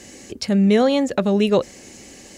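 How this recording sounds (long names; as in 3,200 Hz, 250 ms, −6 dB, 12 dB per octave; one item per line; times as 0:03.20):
background noise floor −43 dBFS
spectral slope −5.5 dB per octave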